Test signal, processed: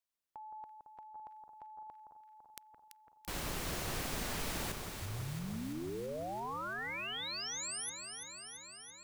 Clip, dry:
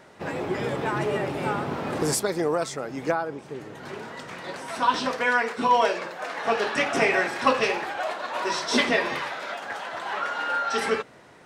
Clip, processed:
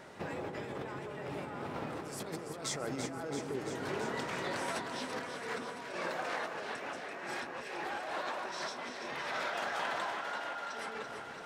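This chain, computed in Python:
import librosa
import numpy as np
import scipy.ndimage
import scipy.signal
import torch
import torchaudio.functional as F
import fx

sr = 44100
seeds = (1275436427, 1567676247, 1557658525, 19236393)

y = fx.over_compress(x, sr, threshold_db=-35.0, ratio=-1.0)
y = fx.echo_alternate(y, sr, ms=168, hz=1500.0, feedback_pct=85, wet_db=-6.0)
y = y * 10.0 ** (-7.5 / 20.0)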